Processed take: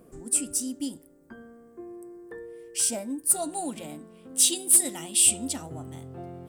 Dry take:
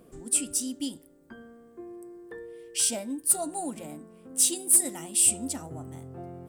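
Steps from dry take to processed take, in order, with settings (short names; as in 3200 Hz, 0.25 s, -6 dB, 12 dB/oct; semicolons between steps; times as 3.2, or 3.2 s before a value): bell 3400 Hz -6.5 dB 0.92 oct, from 3.36 s +7.5 dB; gain +1 dB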